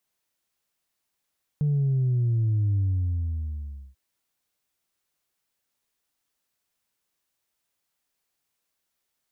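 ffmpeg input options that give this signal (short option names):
-f lavfi -i "aevalsrc='0.0944*clip((2.34-t)/1.18,0,1)*tanh(1.06*sin(2*PI*150*2.34/log(65/150)*(exp(log(65/150)*t/2.34)-1)))/tanh(1.06)':d=2.34:s=44100"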